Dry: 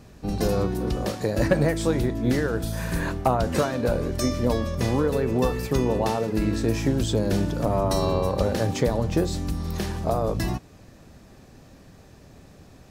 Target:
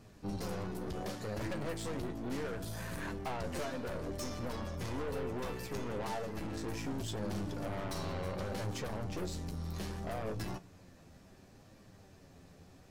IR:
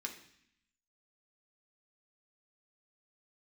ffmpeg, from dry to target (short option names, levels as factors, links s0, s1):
-filter_complex "[0:a]aeval=exprs='(tanh(25.1*val(0)+0.35)-tanh(0.35))/25.1':c=same,flanger=delay=9.3:depth=2.4:regen=41:speed=0.68:shape=triangular,asplit=2[s0][s1];[1:a]atrim=start_sample=2205,asetrate=24696,aresample=44100[s2];[s1][s2]afir=irnorm=-1:irlink=0,volume=0.133[s3];[s0][s3]amix=inputs=2:normalize=0,volume=0.631"